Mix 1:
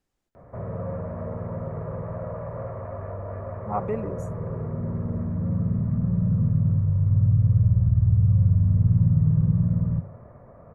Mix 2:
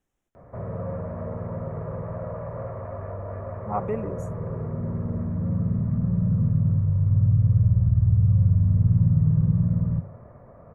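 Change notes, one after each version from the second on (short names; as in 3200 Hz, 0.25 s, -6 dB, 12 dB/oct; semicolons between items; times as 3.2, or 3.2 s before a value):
speech: add Butterworth band-stop 4500 Hz, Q 2.5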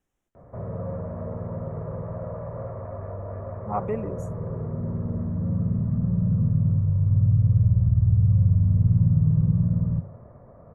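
background: add LPF 1200 Hz 6 dB/oct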